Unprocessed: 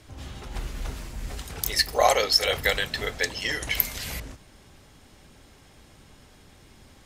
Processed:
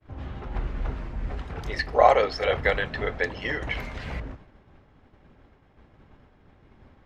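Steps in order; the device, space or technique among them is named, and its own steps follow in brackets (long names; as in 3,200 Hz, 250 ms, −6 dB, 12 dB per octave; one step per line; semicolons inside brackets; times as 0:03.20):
hearing-loss simulation (low-pass filter 1,700 Hz 12 dB per octave; downward expander −47 dBFS)
level +3.5 dB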